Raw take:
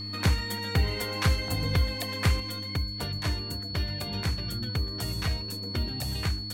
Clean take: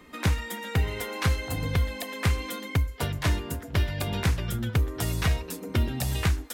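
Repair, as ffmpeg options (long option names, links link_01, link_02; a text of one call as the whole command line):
ffmpeg -i in.wav -af "bandreject=frequency=101:width_type=h:width=4,bandreject=frequency=202:width_type=h:width=4,bandreject=frequency=303:width_type=h:width=4,bandreject=frequency=4400:width=30,asetnsamples=nb_out_samples=441:pad=0,asendcmd='2.4 volume volume 5.5dB',volume=0dB" out.wav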